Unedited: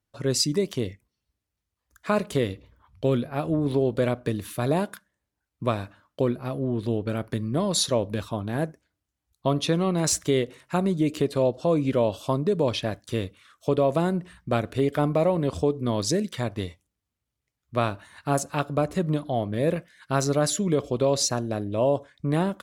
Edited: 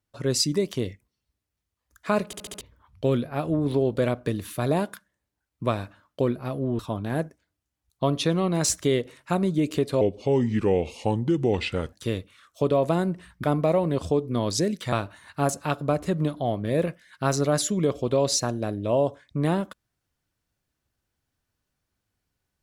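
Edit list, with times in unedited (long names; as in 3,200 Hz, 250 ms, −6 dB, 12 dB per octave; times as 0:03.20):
0:02.26: stutter in place 0.07 s, 5 plays
0:06.79–0:08.22: remove
0:11.44–0:12.99: play speed 81%
0:14.50–0:14.95: remove
0:16.44–0:17.81: remove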